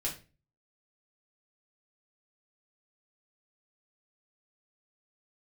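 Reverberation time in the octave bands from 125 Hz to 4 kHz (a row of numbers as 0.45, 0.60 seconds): 0.55, 0.45, 0.35, 0.30, 0.30, 0.30 seconds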